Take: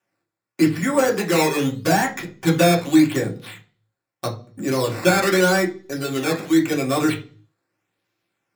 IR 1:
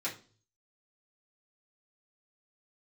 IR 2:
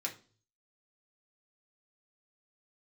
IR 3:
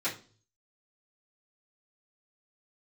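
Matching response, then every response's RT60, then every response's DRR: 2; 0.40 s, 0.40 s, 0.40 s; -8.0 dB, -1.5 dB, -12.0 dB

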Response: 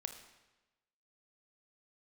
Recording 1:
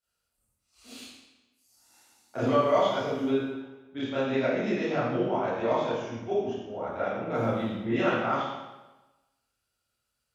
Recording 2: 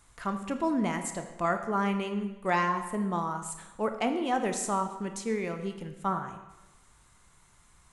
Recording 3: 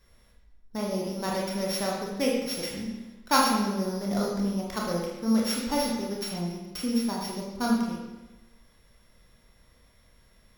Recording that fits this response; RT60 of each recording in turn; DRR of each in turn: 2; 1.1 s, 1.1 s, 1.1 s; -12.0 dB, 6.5 dB, -3.5 dB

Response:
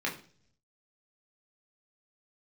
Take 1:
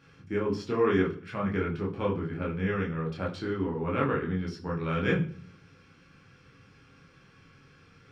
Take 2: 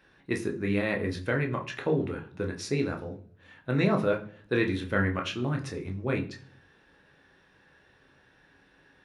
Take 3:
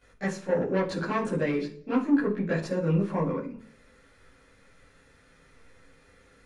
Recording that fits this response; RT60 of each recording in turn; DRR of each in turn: 1; 0.50 s, 0.50 s, 0.50 s; -3.0 dB, 2.0 dB, -12.5 dB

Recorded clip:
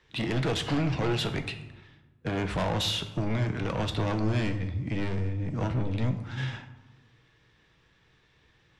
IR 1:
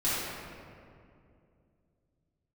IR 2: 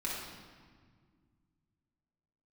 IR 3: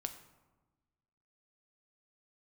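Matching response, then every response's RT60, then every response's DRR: 3; 2.5 s, 1.8 s, 1.2 s; -11.5 dB, -6.0 dB, 7.0 dB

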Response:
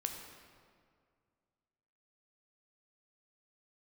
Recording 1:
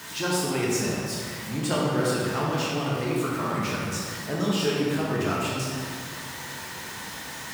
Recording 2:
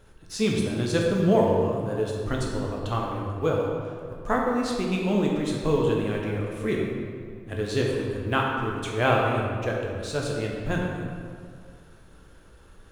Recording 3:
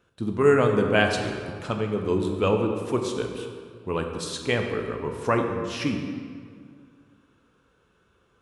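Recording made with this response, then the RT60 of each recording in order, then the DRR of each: 3; 2.1 s, 2.1 s, 2.1 s; -6.0 dB, -2.0 dB, 3.0 dB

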